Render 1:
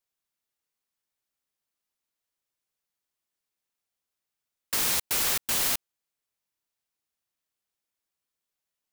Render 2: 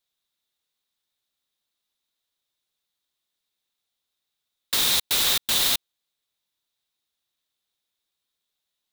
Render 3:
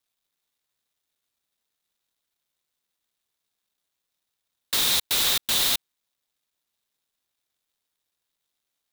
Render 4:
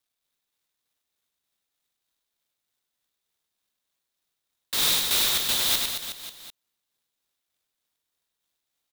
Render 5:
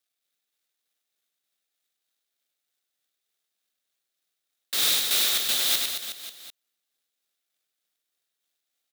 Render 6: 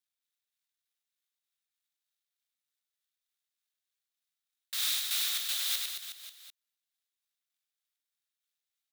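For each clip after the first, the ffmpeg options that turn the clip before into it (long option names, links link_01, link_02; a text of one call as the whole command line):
ffmpeg -i in.wav -af "equalizer=frequency=3700:width_type=o:width=0.4:gain=13.5,volume=2dB" out.wav
ffmpeg -i in.wav -filter_complex "[0:a]asplit=2[link_01][link_02];[link_02]alimiter=limit=-18.5dB:level=0:latency=1,volume=0dB[link_03];[link_01][link_03]amix=inputs=2:normalize=0,acrusher=bits=11:mix=0:aa=0.000001,volume=-4dB" out.wav
ffmpeg -i in.wav -af "tremolo=f=3.3:d=0.48,aecho=1:1:100|220|364|536.8|744.2:0.631|0.398|0.251|0.158|0.1" out.wav
ffmpeg -i in.wav -af "highpass=frequency=360:poles=1,equalizer=frequency=980:width_type=o:width=0.25:gain=-11.5" out.wav
ffmpeg -i in.wav -af "highpass=1100,volume=-8dB" out.wav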